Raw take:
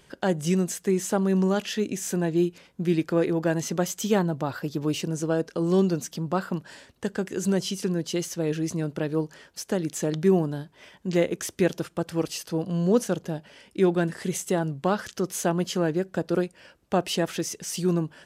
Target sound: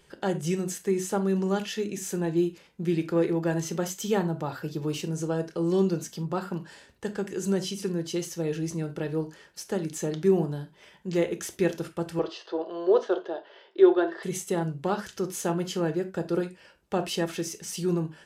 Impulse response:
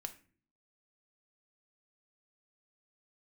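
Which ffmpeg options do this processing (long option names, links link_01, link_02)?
-filter_complex "[0:a]asettb=1/sr,asplit=3[link_01][link_02][link_03];[link_01]atrim=end=12.194[link_04];[link_02]atrim=start=12.19:end=14.23,asetpts=PTS-STARTPTS,afade=type=in:duration=0.004:curve=qsin,afade=type=out:start_time=2.036:duration=0.004:curve=qsin,highpass=frequency=370:width=0.5412,highpass=frequency=370:width=1.3066,equalizer=frequency=370:width_type=q:width=4:gain=10,equalizer=frequency=660:width_type=q:width=4:gain=9,equalizer=frequency=1100:width_type=q:width=4:gain=7,equalizer=frequency=1600:width_type=q:width=4:gain=4,equalizer=frequency=2400:width_type=q:width=4:gain=-7,equalizer=frequency=3500:width_type=q:width=4:gain=5,lowpass=frequency=4200:width=0.5412,lowpass=frequency=4200:width=1.3066[link_05];[link_03]atrim=start=14.226[link_06];[link_04][link_05]acrossfade=duration=0.004:curve1=hsin:curve2=qsin[link_07];[link_07][link_06]acrossfade=duration=0.004:curve1=qsin:curve2=hsin[link_08];[1:a]atrim=start_sample=2205,atrim=end_sample=4410[link_09];[link_08][link_09]afir=irnorm=-1:irlink=0"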